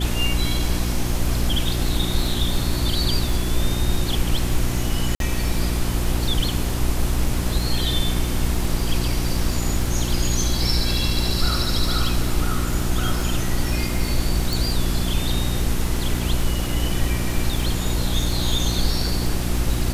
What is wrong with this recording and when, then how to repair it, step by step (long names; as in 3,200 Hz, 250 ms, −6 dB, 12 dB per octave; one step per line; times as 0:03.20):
surface crackle 30 per second −26 dBFS
mains hum 60 Hz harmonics 6 −25 dBFS
0:05.15–0:05.20: drop-out 52 ms
0:14.53: click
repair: click removal
hum removal 60 Hz, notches 6
repair the gap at 0:05.15, 52 ms